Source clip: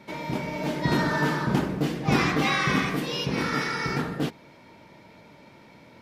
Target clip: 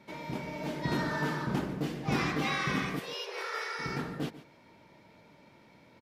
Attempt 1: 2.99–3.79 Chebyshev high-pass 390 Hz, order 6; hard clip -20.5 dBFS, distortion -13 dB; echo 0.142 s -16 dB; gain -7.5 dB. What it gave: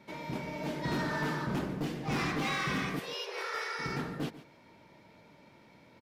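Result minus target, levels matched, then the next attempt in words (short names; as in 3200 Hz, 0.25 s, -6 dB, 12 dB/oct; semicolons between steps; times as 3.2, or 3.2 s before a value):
hard clip: distortion +17 dB
2.99–3.79 Chebyshev high-pass 390 Hz, order 6; hard clip -14 dBFS, distortion -29 dB; echo 0.142 s -16 dB; gain -7.5 dB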